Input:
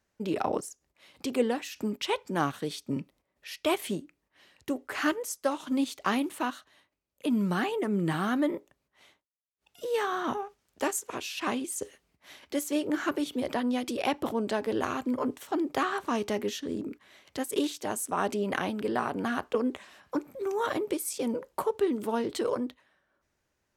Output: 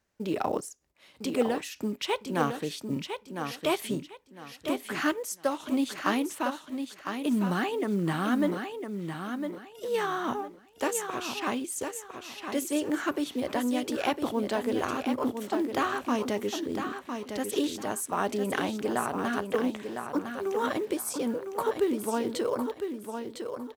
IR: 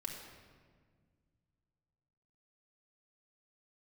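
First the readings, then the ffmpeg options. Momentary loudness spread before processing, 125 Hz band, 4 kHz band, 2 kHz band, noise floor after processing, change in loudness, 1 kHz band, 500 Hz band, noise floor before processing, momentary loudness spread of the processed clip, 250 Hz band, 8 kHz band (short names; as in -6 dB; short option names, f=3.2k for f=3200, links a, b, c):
8 LU, +1.0 dB, +1.0 dB, +1.0 dB, -56 dBFS, +0.5 dB, +1.0 dB, +1.0 dB, -80 dBFS, 8 LU, +1.0 dB, +1.0 dB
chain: -filter_complex "[0:a]acrusher=bits=8:mode=log:mix=0:aa=0.000001,asplit=2[a][b];[b]aecho=0:1:1006|2012|3018:0.447|0.116|0.0302[c];[a][c]amix=inputs=2:normalize=0"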